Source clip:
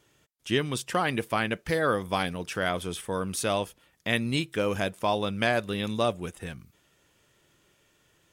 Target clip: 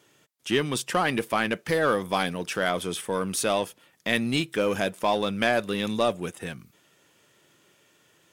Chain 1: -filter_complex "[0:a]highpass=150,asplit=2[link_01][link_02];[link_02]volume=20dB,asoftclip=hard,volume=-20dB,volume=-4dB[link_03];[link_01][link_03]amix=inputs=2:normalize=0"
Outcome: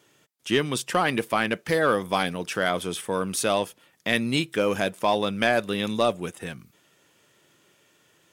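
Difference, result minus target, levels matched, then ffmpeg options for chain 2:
gain into a clipping stage and back: distortion −7 dB
-filter_complex "[0:a]highpass=150,asplit=2[link_01][link_02];[link_02]volume=28dB,asoftclip=hard,volume=-28dB,volume=-4dB[link_03];[link_01][link_03]amix=inputs=2:normalize=0"

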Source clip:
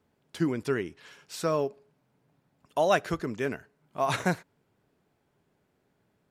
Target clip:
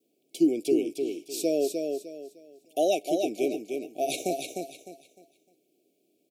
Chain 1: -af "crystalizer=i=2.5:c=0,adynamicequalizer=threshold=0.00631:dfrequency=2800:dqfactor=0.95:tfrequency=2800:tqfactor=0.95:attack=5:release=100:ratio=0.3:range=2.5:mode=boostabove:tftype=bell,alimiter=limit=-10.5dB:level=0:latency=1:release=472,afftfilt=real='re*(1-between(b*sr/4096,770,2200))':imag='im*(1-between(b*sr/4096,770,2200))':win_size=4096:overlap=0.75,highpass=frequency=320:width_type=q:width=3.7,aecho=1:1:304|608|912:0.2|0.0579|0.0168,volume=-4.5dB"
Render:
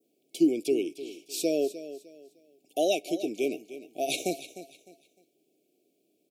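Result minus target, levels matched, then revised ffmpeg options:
echo-to-direct −9 dB; 2,000 Hz band +3.0 dB
-af "crystalizer=i=2.5:c=0,adynamicequalizer=threshold=0.00631:dfrequency=1100:dqfactor=0.95:tfrequency=1100:tqfactor=0.95:attack=5:release=100:ratio=0.3:range=2.5:mode=boostabove:tftype=bell,alimiter=limit=-10.5dB:level=0:latency=1:release=472,afftfilt=real='re*(1-between(b*sr/4096,770,2200))':imag='im*(1-between(b*sr/4096,770,2200))':win_size=4096:overlap=0.75,highpass=frequency=320:width_type=q:width=3.7,aecho=1:1:304|608|912|1216:0.562|0.163|0.0473|0.0137,volume=-4.5dB"

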